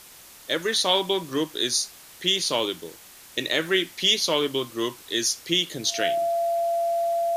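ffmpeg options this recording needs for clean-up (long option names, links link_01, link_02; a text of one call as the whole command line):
ffmpeg -i in.wav -af "bandreject=frequency=680:width=30,afwtdn=0.005" out.wav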